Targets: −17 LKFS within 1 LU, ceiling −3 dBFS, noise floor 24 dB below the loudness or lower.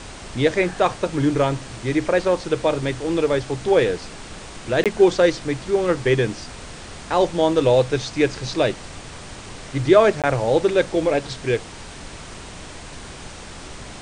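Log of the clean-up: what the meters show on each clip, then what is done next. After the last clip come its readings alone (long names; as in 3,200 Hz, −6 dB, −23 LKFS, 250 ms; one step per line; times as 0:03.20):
number of dropouts 2; longest dropout 17 ms; background noise floor −38 dBFS; target noise floor −45 dBFS; integrated loudness −20.5 LKFS; sample peak −1.5 dBFS; target loudness −17.0 LKFS
→ repair the gap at 0:04.84/0:10.22, 17 ms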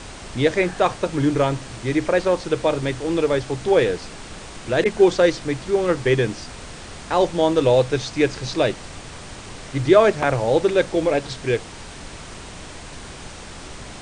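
number of dropouts 0; background noise floor −38 dBFS; target noise floor −45 dBFS
→ noise reduction from a noise print 7 dB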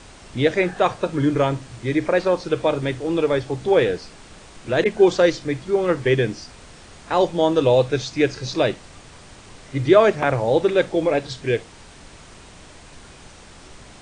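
background noise floor −45 dBFS; integrated loudness −20.5 LKFS; sample peak −1.5 dBFS; target loudness −17.0 LKFS
→ level +3.5 dB
brickwall limiter −3 dBFS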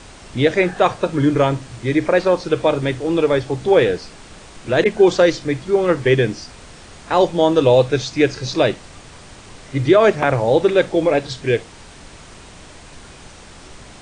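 integrated loudness −17.0 LKFS; sample peak −3.0 dBFS; background noise floor −41 dBFS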